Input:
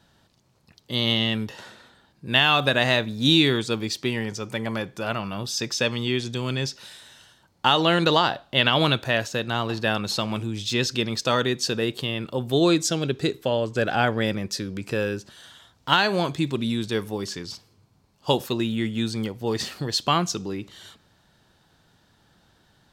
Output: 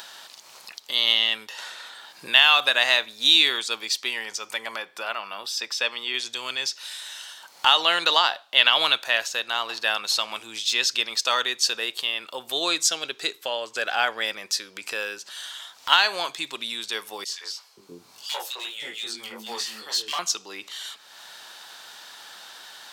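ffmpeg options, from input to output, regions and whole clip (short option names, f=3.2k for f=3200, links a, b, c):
-filter_complex "[0:a]asettb=1/sr,asplit=3[a][b][c];[a]atrim=end=4.764[d];[b]atrim=start=4.76:end=6.14,asetpts=PTS-STARTPTS,afade=t=in:d=0.004:c=qsin,afade=t=out:st=1.376:d=0.004:c=qsin,highpass=170,equalizer=f=9.3k:t=o:w=2.5:g=-6.5,bandreject=f=6.5k:w=8.8[e];[c]atrim=start=6.136[f];[d][e]acrossfade=d=0.004:c1=hsin:c2=qsin[g];[g][f]acrossfade=d=0.004:c1=qsin:c2=hsin,asettb=1/sr,asplit=3[h][i][j];[h]atrim=end=17.244[k];[i]atrim=start=17.24:end=20.19,asetpts=PTS-STARTPTS,afade=t=in:d=0.004:c=qsin,afade=t=out:st=2.946:d=0.004:c=qsin,flanger=delay=19.5:depth=3.5:speed=2.7,asoftclip=type=hard:threshold=-21.5dB,acrossover=split=390|2100[l][m][n];[m]adelay=50[o];[l]adelay=530[p];[p][o][n]amix=inputs=3:normalize=0,atrim=end_sample=130095[q];[j]atrim=start=20.186[r];[k][q]acrossfade=d=0.004:c1=hsin:c2=qsin[s];[s][r]acrossfade=d=0.004:c1=qsin:c2=hsin,highpass=1.1k,equalizer=f=1.6k:w=1.4:g=-3,acompressor=mode=upward:threshold=-33dB:ratio=2.5,volume=5dB"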